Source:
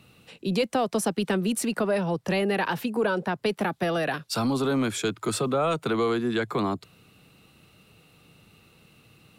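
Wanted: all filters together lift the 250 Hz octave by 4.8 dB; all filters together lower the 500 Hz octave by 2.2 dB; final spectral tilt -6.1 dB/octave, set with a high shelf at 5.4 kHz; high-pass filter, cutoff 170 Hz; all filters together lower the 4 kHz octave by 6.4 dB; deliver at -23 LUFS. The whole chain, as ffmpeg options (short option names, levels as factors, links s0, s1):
-af "highpass=170,equalizer=f=250:t=o:g=8.5,equalizer=f=500:t=o:g=-5.5,equalizer=f=4000:t=o:g=-7,highshelf=f=5400:g=-4,volume=1.33"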